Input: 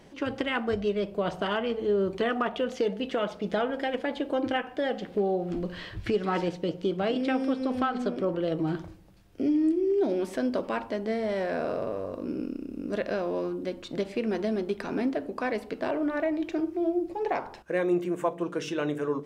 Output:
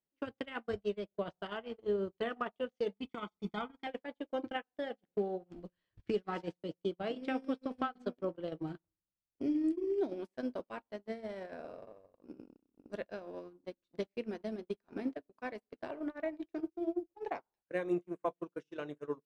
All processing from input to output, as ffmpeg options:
-filter_complex "[0:a]asettb=1/sr,asplit=3[a][b][c];[a]atrim=end=2.934[d];[b]atrim=start=2.93:end=3.87,asetpts=PTS-STARTPTS,afade=t=in:d=0.004:c=qsin,afade=t=out:st=0.936:d=0.004:c=qsin,equalizer=f=140:w=3.2:g=-7,aecho=1:1:0.9:0.98,atrim=end_sample=41454[e];[c]atrim=start=3.866[f];[d][e]acrossfade=d=0.004:c1=hsin:c2=qsin[g];[g][f]acrossfade=d=0.004:c1=qsin:c2=hsin,acompressor=threshold=-36dB:ratio=2.5,agate=range=-48dB:threshold=-33dB:ratio=16:detection=peak,volume=3.5dB"

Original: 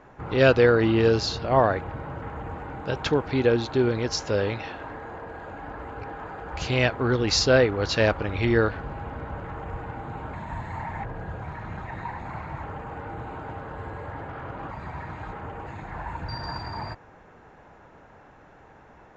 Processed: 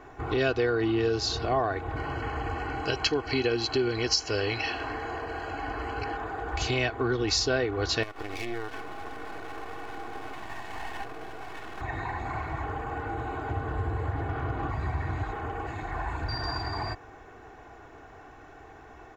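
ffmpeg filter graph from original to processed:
-filter_complex "[0:a]asettb=1/sr,asplit=3[a][b][c];[a]atrim=end=1.964[d];[b]atrim=start=1.96:end=6.17,asetpts=PTS-STARTPTS,afade=t=in:d=0.004:c=qsin,afade=t=out:st=4.206:d=0.004:c=qsin,asuperstop=centerf=3600:order=8:qfactor=5.7,equalizer=f=3.9k:t=o:w=1.5:g=12[e];[c]atrim=start=6.166[f];[d][e]acrossfade=d=0.004:c1=hsin:c2=qsin[g];[g][f]acrossfade=d=0.004:c1=qsin:c2=hsin,asettb=1/sr,asplit=3[h][i][j];[h]atrim=end=8.034[k];[i]atrim=start=8.03:end=11.81,asetpts=PTS-STARTPTS,afade=t=in:d=0.004:c=qsin,afade=t=out:st=3.776:d=0.004:c=qsin,highpass=230,aeval=exprs='max(val(0),0)':c=same,acompressor=threshold=-31dB:ratio=6:attack=3.2:release=140:knee=1:detection=peak[l];[j]atrim=start=11.806[m];[k][l]acrossfade=d=0.004:c1=hsin:c2=qsin[n];[n][m]acrossfade=d=0.004:c1=qsin:c2=hsin,asettb=1/sr,asplit=3[o][p][q];[o]atrim=end=13.504[r];[p]atrim=start=13.5:end=15.24,asetpts=PTS-STARTPTS,afade=t=in:d=0.004:c=qsin,afade=t=out:st=1.736:d=0.004:c=qsin,highpass=62,lowshelf=f=170:g=12[s];[q]atrim=start=15.236[t];[r][s]acrossfade=d=0.004:c1=hsin:c2=qsin[u];[u][t]acrossfade=d=0.004:c1=qsin:c2=hsin,highshelf=f=6.2k:g=6.5,aecho=1:1:2.7:0.66,acompressor=threshold=-27dB:ratio=3,volume=1dB"

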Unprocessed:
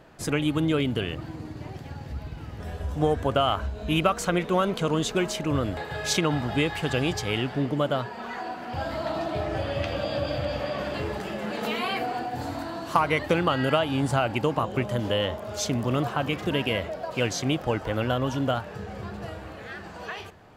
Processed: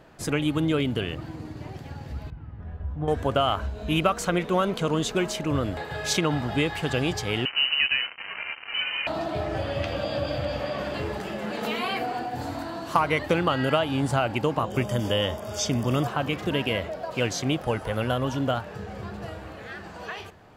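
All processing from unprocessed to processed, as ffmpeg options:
-filter_complex "[0:a]asettb=1/sr,asplit=3[a][b][c];[a]atrim=end=2.304[d];[b]atrim=start=2.3:end=3.08,asetpts=PTS-STARTPTS,afade=t=in:d=0.004:c=qsin,afade=t=out:st=0.776:d=0.004:c=qsin,lowpass=1.2k,equalizer=f=510:w=0.62:g=-11.5[e];[c]atrim=start=3.076[f];[d][e]acrossfade=d=0.004:c1=hsin:c2=qsin[g];[g][f]acrossfade=d=0.004:c1=qsin:c2=hsin,asettb=1/sr,asplit=3[h][i][j];[h]atrim=end=7.454[k];[i]atrim=start=7.45:end=9.07,asetpts=PTS-STARTPTS,afade=t=in:d=0.004:c=qsin,afade=t=out:st=1.616:d=0.004:c=qsin,lowshelf=f=170:g=5.5,acrusher=bits=4:mix=0:aa=0.5,lowpass=f=2.6k:t=q:w=0.5098,lowpass=f=2.6k:t=q:w=0.6013,lowpass=f=2.6k:t=q:w=0.9,lowpass=f=2.6k:t=q:w=2.563,afreqshift=-3100[l];[j]atrim=start=9.066[m];[k][l]acrossfade=d=0.004:c1=hsin:c2=qsin[n];[n][m]acrossfade=d=0.004:c1=qsin:c2=hsin,asettb=1/sr,asplit=3[o][p][q];[o]atrim=end=14.704[r];[p]atrim=start=14.7:end=16.07,asetpts=PTS-STARTPTS,afade=t=in:d=0.004:c=qsin,afade=t=out:st=1.366:d=0.004:c=qsin,acrossover=split=5600[s][t];[t]acompressor=threshold=-51dB:ratio=4:attack=1:release=60[u];[s][u]amix=inputs=2:normalize=0,asuperstop=centerf=4100:order=20:qfactor=7.2,bass=f=250:g=2,treble=f=4k:g=10[v];[q]atrim=start=16.066[w];[r][v]acrossfade=d=0.004:c1=hsin:c2=qsin[x];[x][w]acrossfade=d=0.004:c1=qsin:c2=hsin,asettb=1/sr,asplit=3[y][z][aa];[y]atrim=end=17.624[ab];[z]atrim=start=17.62:end=18.25,asetpts=PTS-STARTPTS,afade=t=in:d=0.004:c=qsin,afade=t=out:st=0.626:d=0.004:c=qsin,equalizer=f=10k:t=o:w=0.21:g=15,bandreject=f=310:w=5.9[ac];[aa]atrim=start=18.246[ad];[ab][ac]acrossfade=d=0.004:c1=hsin:c2=qsin[ae];[ae][ad]acrossfade=d=0.004:c1=qsin:c2=hsin"

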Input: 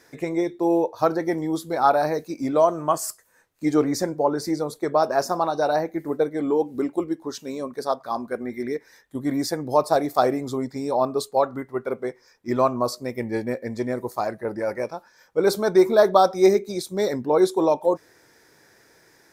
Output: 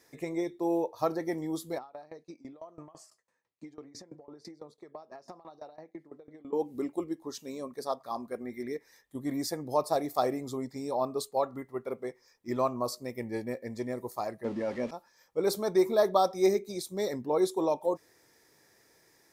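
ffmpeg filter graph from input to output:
-filter_complex "[0:a]asettb=1/sr,asplit=3[a][b][c];[a]atrim=end=1.784[d];[b]atrim=start=1.78:end=6.53,asetpts=PTS-STARTPTS,afade=t=in:d=0.004:c=qsin,afade=t=out:st=4.746:d=0.004:c=qsin,highpass=110,lowpass=4.7k,acompressor=threshold=-28dB:ratio=16:attack=3.2:release=140:knee=1:detection=peak,aeval=exprs='val(0)*pow(10,-20*if(lt(mod(6*n/s,1),2*abs(6)/1000),1-mod(6*n/s,1)/(2*abs(6)/1000),(mod(6*n/s,1)-2*abs(6)/1000)/(1-2*abs(6)/1000))/20)':c=same[e];[c]atrim=start=6.526[f];[d][e]acrossfade=d=0.004:c1=hsin:c2=qsin[g];[g][f]acrossfade=d=0.004:c1=qsin:c2=hsin,asettb=1/sr,asplit=3[h][i][j];[h]atrim=end=14.444[k];[i]atrim=start=14.44:end=14.91,asetpts=PTS-STARTPTS,afade=t=in:d=0.004:c=qsin,afade=t=out:st=0.466:d=0.004:c=qsin,aeval=exprs='val(0)+0.5*0.0178*sgn(val(0))':c=same,lowpass=5.1k,equalizer=f=240:w=4.3:g=12[l];[j]atrim=start=14.906[m];[k][l]acrossfade=d=0.004:c1=hsin:c2=qsin[n];[n][m]acrossfade=d=0.004:c1=qsin:c2=hsin,highshelf=f=6.2k:g=5.5,bandreject=f=1.5k:w=6.5,volume=-8.5dB"

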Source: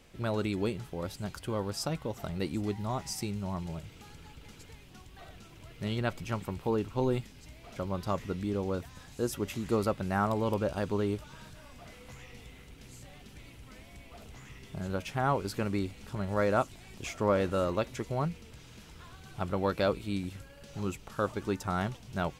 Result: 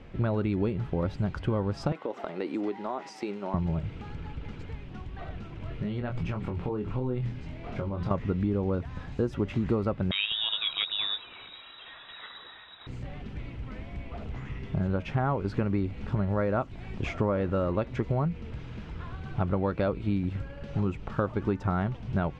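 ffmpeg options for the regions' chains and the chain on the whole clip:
-filter_complex "[0:a]asettb=1/sr,asplit=3[a][b][c];[a]atrim=end=1.924[d];[b]atrim=start=1.92:end=3.54,asetpts=PTS-STARTPTS,afade=t=in:d=0.004:c=qsin,afade=t=out:st=1.616:d=0.004:c=qsin,highpass=f=300:w=0.5412,highpass=f=300:w=1.3066,acompressor=threshold=-36dB:ratio=5:attack=3.2:release=140:knee=1:detection=peak[e];[c]atrim=start=3.536[f];[d][e]acrossfade=d=0.004:c1=hsin:c2=qsin[g];[g][f]acrossfade=d=0.004:c1=qsin:c2=hsin,asettb=1/sr,asplit=3[h][i][j];[h]atrim=end=5.594[k];[i]atrim=start=5.59:end=8.11,asetpts=PTS-STARTPTS,afade=t=in:d=0.004:c=qsin,afade=t=out:st=2.516:d=0.004:c=qsin,bandreject=f=60:t=h:w=6,bandreject=f=120:t=h:w=6,bandreject=f=180:t=h:w=6,acompressor=threshold=-39dB:ratio=8:attack=3.2:release=140:knee=1:detection=peak,asplit=2[l][m];[m]adelay=24,volume=-5dB[n];[l][n]amix=inputs=2:normalize=0,atrim=end_sample=111132[o];[j]atrim=start=8.106[p];[k][o]acrossfade=d=0.004:c1=hsin:c2=qsin[q];[q][p]acrossfade=d=0.004:c1=qsin:c2=hsin,asettb=1/sr,asplit=3[r][s][t];[r]atrim=end=10.114[u];[s]atrim=start=10.11:end=12.87,asetpts=PTS-STARTPTS,afade=t=in:d=0.004:c=qsin,afade=t=out:st=2.756:d=0.004:c=qsin,aphaser=in_gain=1:out_gain=1:delay=5:decay=0.39:speed=1.4:type=sinusoidal,lowpass=f=3.3k:t=q:w=0.5098,lowpass=f=3.3k:t=q:w=0.6013,lowpass=f=3.3k:t=q:w=0.9,lowpass=f=3.3k:t=q:w=2.563,afreqshift=-3900[v];[t]atrim=start=12.866[w];[u][v]acrossfade=d=0.004:c1=hsin:c2=qsin[x];[x][w]acrossfade=d=0.004:c1=qsin:c2=hsin,lowpass=2.3k,lowshelf=f=270:g=6.5,acompressor=threshold=-31dB:ratio=6,volume=7.5dB"

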